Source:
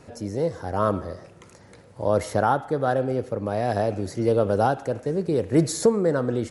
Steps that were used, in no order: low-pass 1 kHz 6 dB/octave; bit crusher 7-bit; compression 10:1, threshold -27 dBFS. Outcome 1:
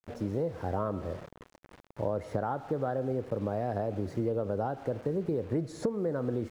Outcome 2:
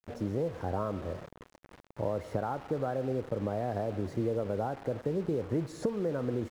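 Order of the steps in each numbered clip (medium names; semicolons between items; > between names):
bit crusher > low-pass > compression; compression > bit crusher > low-pass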